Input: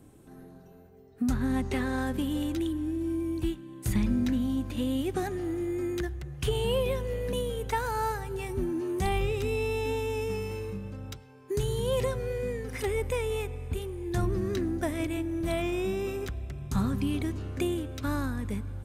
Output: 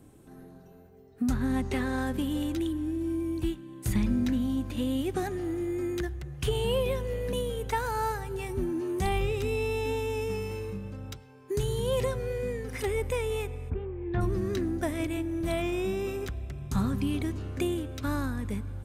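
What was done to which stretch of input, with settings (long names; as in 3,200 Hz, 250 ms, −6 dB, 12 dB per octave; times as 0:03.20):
0:13.69–0:14.20: low-pass filter 1,700 Hz → 3,000 Hz 24 dB per octave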